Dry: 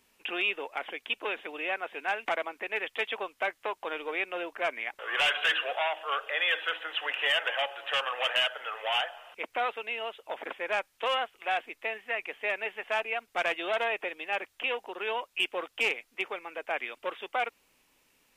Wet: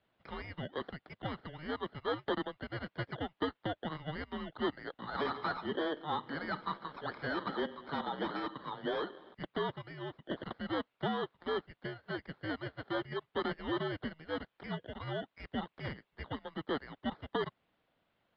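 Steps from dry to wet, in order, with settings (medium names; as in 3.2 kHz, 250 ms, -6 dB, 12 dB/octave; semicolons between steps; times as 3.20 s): bit-reversed sample order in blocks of 16 samples; harmonic-percussive split harmonic -4 dB; mistuned SSB -310 Hz 420–3600 Hz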